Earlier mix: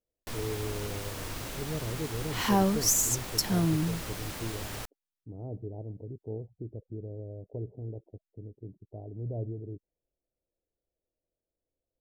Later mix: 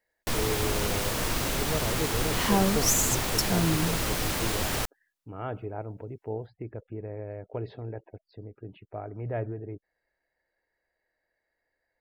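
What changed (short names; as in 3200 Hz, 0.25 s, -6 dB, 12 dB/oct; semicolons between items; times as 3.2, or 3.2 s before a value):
speech: remove Gaussian blur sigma 17 samples; first sound +10.0 dB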